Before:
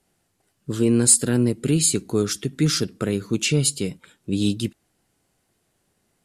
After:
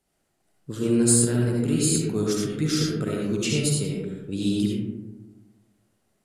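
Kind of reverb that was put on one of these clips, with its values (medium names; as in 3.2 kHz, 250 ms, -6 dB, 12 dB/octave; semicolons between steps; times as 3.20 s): algorithmic reverb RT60 1.3 s, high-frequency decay 0.3×, pre-delay 30 ms, DRR -3 dB; trim -7 dB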